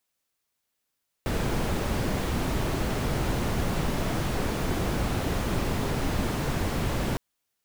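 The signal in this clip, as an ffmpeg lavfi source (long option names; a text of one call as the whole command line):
ffmpeg -f lavfi -i "anoisesrc=color=brown:amplitude=0.221:duration=5.91:sample_rate=44100:seed=1" out.wav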